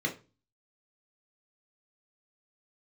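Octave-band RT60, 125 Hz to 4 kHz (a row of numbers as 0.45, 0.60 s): 0.50, 0.40, 0.35, 0.30, 0.25, 0.25 s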